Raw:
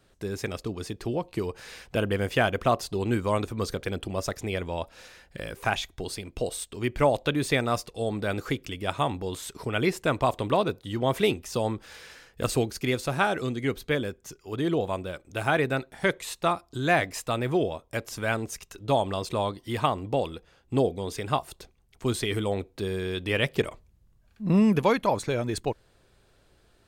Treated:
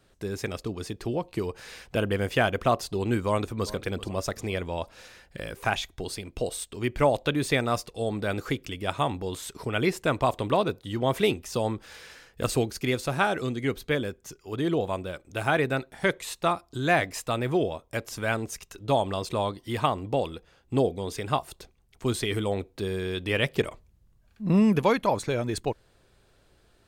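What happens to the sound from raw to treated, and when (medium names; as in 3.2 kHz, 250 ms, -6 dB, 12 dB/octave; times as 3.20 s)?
3.27–3.70 s: echo throw 390 ms, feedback 45%, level -17.5 dB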